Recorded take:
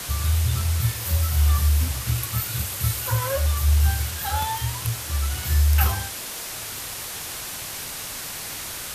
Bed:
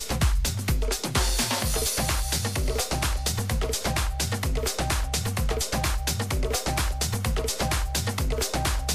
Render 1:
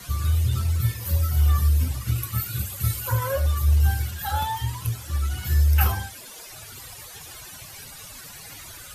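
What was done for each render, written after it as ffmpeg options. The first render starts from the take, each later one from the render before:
-af "afftdn=nr=15:nf=-34"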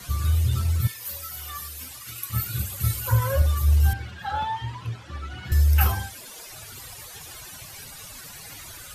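-filter_complex "[0:a]asettb=1/sr,asplit=3[a][b][c];[a]atrim=end=0.874[d];[b]atrim=start=0.87:end=2.3,asetpts=PTS-STARTPTS,afade=t=in:d=0.004:c=qsin,afade=t=out:st=1.426:d=0.004:c=qsin,highpass=f=1.4k:p=1[e];[c]atrim=start=2.296[f];[d][e]acrossfade=d=0.004:c1=hsin:c2=qsin[g];[g][f]acrossfade=d=0.004:c1=qsin:c2=hsin,asettb=1/sr,asplit=3[h][i][j];[h]atrim=end=2.964[k];[i]atrim=start=2.96:end=3.42,asetpts=PTS-STARTPTS,afade=t=in:d=0.004:c=qsin,afade=t=out:st=0.456:d=0.004:c=qsin,asubboost=boost=11.5:cutoff=230[l];[j]atrim=start=3.416[m];[k][l]acrossfade=d=0.004:c1=hsin:c2=qsin[n];[n][m]acrossfade=d=0.004:c1=qsin:c2=hsin,asettb=1/sr,asplit=3[o][p][q];[o]atrim=end=3.934[r];[p]atrim=start=3.93:end=5.52,asetpts=PTS-STARTPTS,afade=t=in:d=0.004:c=qsin,afade=t=out:st=1.586:d=0.004:c=qsin,highpass=130,lowpass=3.1k[s];[q]atrim=start=5.516[t];[r][s]acrossfade=d=0.004:c1=hsin:c2=qsin[u];[u][t]acrossfade=d=0.004:c1=qsin:c2=hsin"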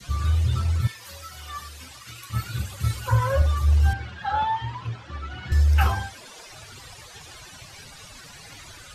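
-af "lowpass=6.5k,adynamicequalizer=threshold=0.00891:dfrequency=980:dqfactor=0.75:tfrequency=980:tqfactor=0.75:attack=5:release=100:ratio=0.375:range=2:mode=boostabove:tftype=bell"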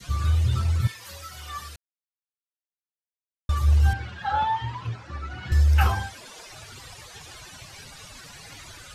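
-filter_complex "[0:a]asettb=1/sr,asplit=3[a][b][c];[a]atrim=end=4.954[d];[b]atrim=start=4.95:end=5.41,asetpts=PTS-STARTPTS,afade=t=in:d=0.004:c=qsin,afade=t=out:st=0.456:d=0.004:c=qsin,equalizer=f=3.2k:w=4.7:g=-8.5[e];[c]atrim=start=5.406[f];[d][e]acrossfade=d=0.004:c1=hsin:c2=qsin[g];[g][f]acrossfade=d=0.004:c1=qsin:c2=hsin,asplit=3[h][i][j];[h]atrim=end=1.76,asetpts=PTS-STARTPTS,afade=t=out:st=1.756:d=0.004:c=hsin[k];[i]atrim=start=1.76:end=3.49,asetpts=PTS-STARTPTS,volume=0[l];[j]atrim=start=3.49,asetpts=PTS-STARTPTS,afade=t=in:d=0.004:c=hsin[m];[k][l][m]concat=n=3:v=0:a=1"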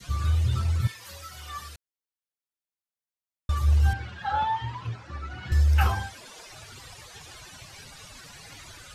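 -af "volume=-2dB"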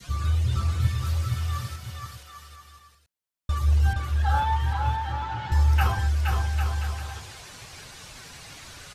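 -af "aecho=1:1:470|799|1029|1191|1303:0.631|0.398|0.251|0.158|0.1"

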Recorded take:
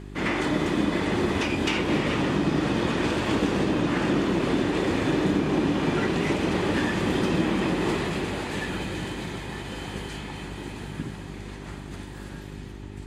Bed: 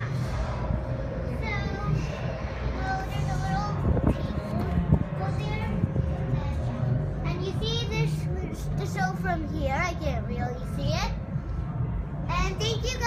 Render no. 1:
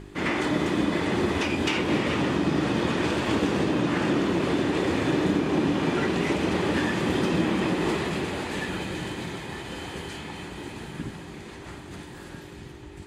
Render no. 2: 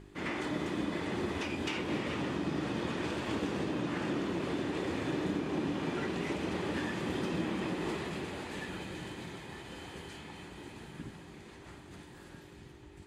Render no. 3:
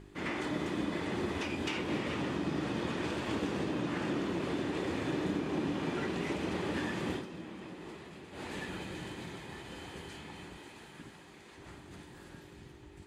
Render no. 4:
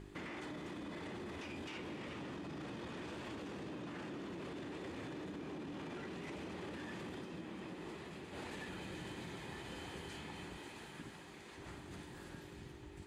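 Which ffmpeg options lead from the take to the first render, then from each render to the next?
-af "bandreject=f=50:t=h:w=4,bandreject=f=100:t=h:w=4,bandreject=f=150:t=h:w=4,bandreject=f=200:t=h:w=4,bandreject=f=250:t=h:w=4"
-af "volume=-10dB"
-filter_complex "[0:a]asettb=1/sr,asplit=3[a][b][c];[a]atrim=end=10.574[d];[b]atrim=start=10.57:end=11.58,asetpts=PTS-STARTPTS,afade=t=in:d=0.004:c=qsin,afade=t=out:st=1.006:d=0.004:c=qsin,lowshelf=f=310:g=-10[e];[c]atrim=start=11.576[f];[d][e]acrossfade=d=0.004:c1=hsin:c2=qsin[g];[g][f]acrossfade=d=0.004:c1=qsin:c2=hsin,asplit=3[h][i][j];[h]atrim=end=7.25,asetpts=PTS-STARTPTS,afade=t=out:st=7.12:d=0.13:silence=0.281838[k];[i]atrim=start=7.25:end=8.31,asetpts=PTS-STARTPTS,volume=-11dB[l];[j]atrim=start=8.31,asetpts=PTS-STARTPTS,afade=t=in:d=0.13:silence=0.281838[m];[k][l][m]concat=n=3:v=0:a=1"
-af "alimiter=level_in=9dB:limit=-24dB:level=0:latency=1:release=22,volume=-9dB,acompressor=threshold=-43dB:ratio=6"

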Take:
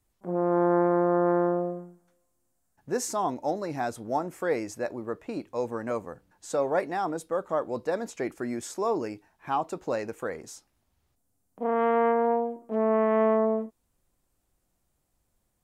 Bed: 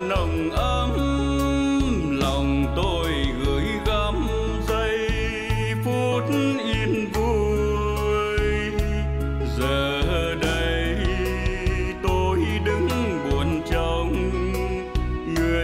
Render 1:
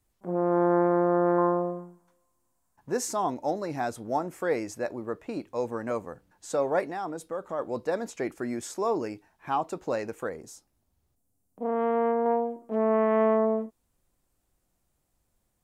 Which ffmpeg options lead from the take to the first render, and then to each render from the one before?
-filter_complex "[0:a]asettb=1/sr,asplit=3[a][b][c];[a]atrim=end=1.384[d];[b]atrim=start=1.38:end=2.92,asetpts=PTS-STARTPTS,afade=t=in:d=0.004:c=qsin,afade=t=out:st=1.536:d=0.004:c=qsin,equalizer=f=1k:w=4.7:g=12.5[e];[c]atrim=start=2.916[f];[d][e]acrossfade=d=0.004:c1=hsin:c2=qsin[g];[g][f]acrossfade=d=0.004:c1=qsin:c2=hsin,asplit=3[h][i][j];[h]afade=t=out:st=6.9:d=0.02[k];[i]acompressor=threshold=-37dB:ratio=1.5:attack=3.2:release=140:knee=1:detection=peak,afade=t=in:st=6.9:d=0.02,afade=t=out:st=7.58:d=0.02[l];[j]afade=t=in:st=7.58:d=0.02[m];[k][l][m]amix=inputs=3:normalize=0,asettb=1/sr,asplit=3[n][o][p];[n]atrim=end=10.294[q];[o]atrim=start=10.29:end=12.26,asetpts=PTS-STARTPTS,afade=t=in:d=0.004:c=qsin,afade=t=out:st=1.966:d=0.004:c=qsin,equalizer=f=2.2k:t=o:w=2.7:g=-7.5[r];[p]atrim=start=12.256[s];[q][r]acrossfade=d=0.004:c1=hsin:c2=qsin[t];[t][s]acrossfade=d=0.004:c1=qsin:c2=hsin"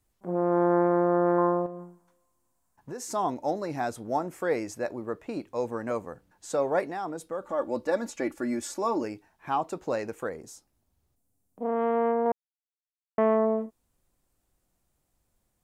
-filter_complex "[0:a]asettb=1/sr,asplit=3[a][b][c];[a]atrim=end=1.664[d];[b]atrim=start=1.66:end=3.11,asetpts=PTS-STARTPTS,afade=t=in:d=0.004:c=qsin,afade=t=out:st=1.446:d=0.004:c=qsin,acompressor=threshold=-35dB:ratio=4:attack=3.2:release=140:knee=1:detection=peak[e];[c]atrim=start=3.106[f];[d][e]acrossfade=d=0.004:c1=hsin:c2=qsin[g];[g][f]acrossfade=d=0.004:c1=qsin:c2=hsin,asettb=1/sr,asplit=3[h][i][j];[h]atrim=end=7.414[k];[i]atrim=start=7.41:end=9.04,asetpts=PTS-STARTPTS,afade=t=in:d=0.004:c=qsin,afade=t=out:st=1.626:d=0.004:c=qsin,aecho=1:1:3.5:0.65,atrim=end_sample=71883[l];[j]atrim=start=9.036[m];[k][l]acrossfade=d=0.004:c1=hsin:c2=qsin[n];[n][m]acrossfade=d=0.004:c1=qsin:c2=hsin,asplit=3[o][p][q];[o]atrim=end=12.32,asetpts=PTS-STARTPTS,afade=t=out:st=12.316:d=0.004:c=hsin[r];[p]atrim=start=12.32:end=13.18,asetpts=PTS-STARTPTS,volume=0[s];[q]atrim=start=13.18,asetpts=PTS-STARTPTS,afade=t=in:d=0.004:c=hsin[t];[r][s][t]concat=n=3:v=0:a=1"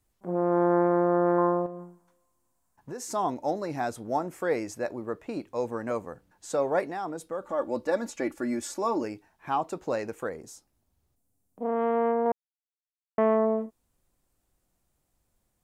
-af anull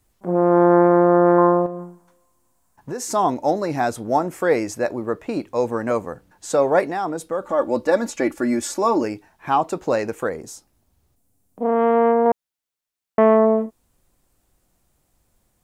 -af "volume=9dB"

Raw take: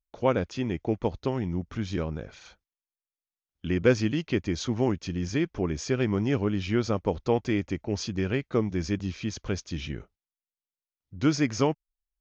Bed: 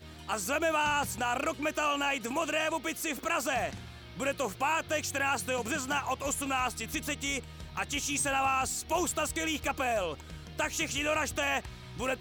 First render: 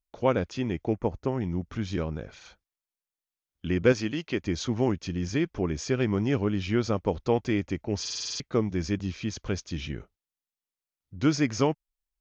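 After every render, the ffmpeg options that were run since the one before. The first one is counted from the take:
-filter_complex "[0:a]asettb=1/sr,asplit=3[a][b][c];[a]atrim=end=0.934[d];[b]atrim=start=0.93:end=1.41,asetpts=PTS-STARTPTS,afade=t=in:d=0.004:c=qsin,afade=t=out:st=0.476:d=0.004:c=qsin,equalizer=f=3.8k:t=o:w=0.77:g=-15[e];[c]atrim=start=1.406[f];[d][e]acrossfade=d=0.004:c1=hsin:c2=qsin[g];[g][f]acrossfade=d=0.004:c1=qsin:c2=hsin,asettb=1/sr,asplit=3[h][i][j];[h]atrim=end=3.924[k];[i]atrim=start=3.92:end=4.42,asetpts=PTS-STARTPTS,afade=t=in:d=0.004:c=qsin,afade=t=out:st=0.496:d=0.004:c=qsin,lowshelf=f=180:g=-10.5[l];[j]atrim=start=4.416[m];[k][l]acrossfade=d=0.004:c1=hsin:c2=qsin[n];[n][m]acrossfade=d=0.004:c1=qsin:c2=hsin,asplit=9[o][p][q][r][s][t][u][v][w];[o]atrim=end=8.052[x];[p]atrim=start=7.998:end=8.052[y];[q]atrim=start=7.998:end=8.052[z];[r]atrim=start=7.998:end=8.052[aa];[s]atrim=start=7.998:end=8.052[ab];[t]atrim=start=7.998:end=8.052[ac];[u]atrim=start=7.998:end=8.052[ad];[v]atrim=start=7.998:end=8.052[ae];[w]atrim=start=8.398[af];[x][y]acrossfade=d=0.004:c1=hsin:c2=hsin[ag];[ag][z]acrossfade=d=0.004:c1=hsin:c2=hsin[ah];[ah][aa]acrossfade=d=0.004:c1=hsin:c2=hsin[ai];[ai][ab]acrossfade=d=0.004:c1=hsin:c2=hsin[aj];[aj][ac]acrossfade=d=0.004:c1=hsin:c2=hsin[ak];[ak][ad]acrossfade=d=0.004:c1=hsin:c2=hsin[al];[al][ae]acrossfade=d=0.004:c1=hsin:c2=hsin[am];[am][af]acrossfade=d=0.004:c1=hsin:c2=hsin"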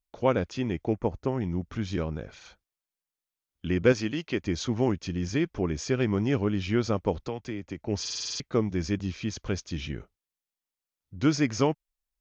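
-filter_complex "[0:a]asettb=1/sr,asplit=3[a][b][c];[a]atrim=end=7.224[d];[b]atrim=start=7.22:end=7.84,asetpts=PTS-STARTPTS,afade=t=in:d=0.004:c=qsin,afade=t=out:st=0.616:d=0.004:c=qsin,acrossover=split=160|1100[e][f][g];[e]acompressor=threshold=-43dB:ratio=4[h];[f]acompressor=threshold=-34dB:ratio=4[i];[g]acompressor=threshold=-45dB:ratio=4[j];[h][i][j]amix=inputs=3:normalize=0[k];[c]atrim=start=7.836[l];[d][k]acrossfade=d=0.004:c1=hsin:c2=qsin[m];[m][l]acrossfade=d=0.004:c1=qsin:c2=hsin"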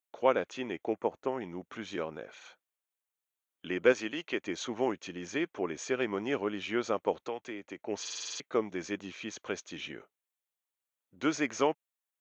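-af "highpass=420,equalizer=f=5k:w=3.5:g=-13"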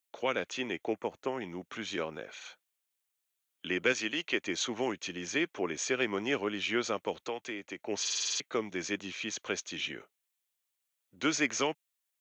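-filter_complex "[0:a]acrossover=split=230|1900[a][b][c];[b]alimiter=limit=-22.5dB:level=0:latency=1:release=210[d];[c]acontrast=79[e];[a][d][e]amix=inputs=3:normalize=0"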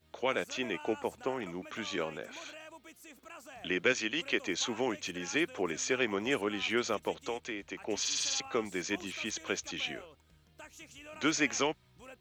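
-filter_complex "[1:a]volume=-19.5dB[a];[0:a][a]amix=inputs=2:normalize=0"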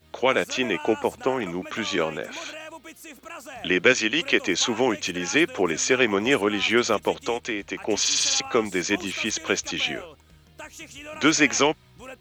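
-af "volume=10.5dB"

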